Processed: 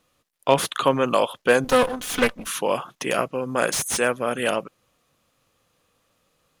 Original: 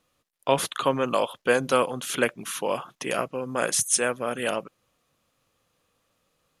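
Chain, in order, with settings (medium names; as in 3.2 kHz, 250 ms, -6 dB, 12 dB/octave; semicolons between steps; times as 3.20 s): 1.64–2.47 s: comb filter that takes the minimum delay 4 ms; slew-rate limiter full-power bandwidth 320 Hz; trim +4 dB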